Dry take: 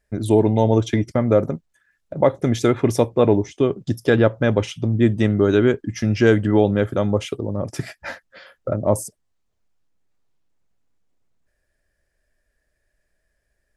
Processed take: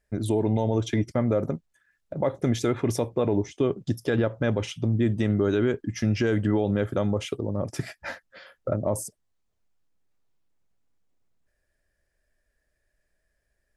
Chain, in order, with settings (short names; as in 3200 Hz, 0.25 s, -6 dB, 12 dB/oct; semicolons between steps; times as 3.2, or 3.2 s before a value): limiter -10 dBFS, peak gain reduction 7.5 dB; gain -3.5 dB